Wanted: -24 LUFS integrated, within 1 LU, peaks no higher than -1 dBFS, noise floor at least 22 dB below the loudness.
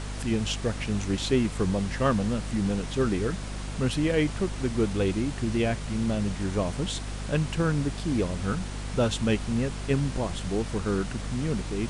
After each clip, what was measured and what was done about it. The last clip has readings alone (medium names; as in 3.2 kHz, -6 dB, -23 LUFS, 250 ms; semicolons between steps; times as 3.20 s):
hum 50 Hz; highest harmonic 250 Hz; hum level -32 dBFS; noise floor -35 dBFS; noise floor target -50 dBFS; loudness -28.0 LUFS; peak level -11.5 dBFS; loudness target -24.0 LUFS
-> hum notches 50/100/150/200/250 Hz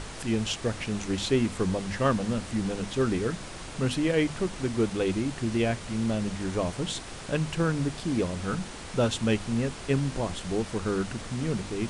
hum not found; noise floor -41 dBFS; noise floor target -51 dBFS
-> noise print and reduce 10 dB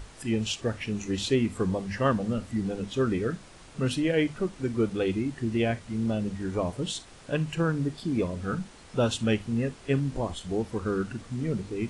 noise floor -50 dBFS; noise floor target -52 dBFS
-> noise print and reduce 6 dB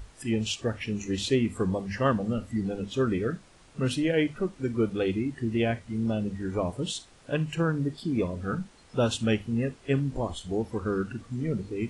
noise floor -55 dBFS; loudness -29.5 LUFS; peak level -12.5 dBFS; loudness target -24.0 LUFS
-> trim +5.5 dB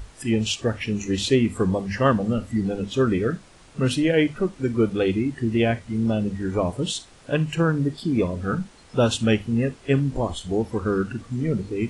loudness -24.0 LUFS; peak level -7.0 dBFS; noise floor -50 dBFS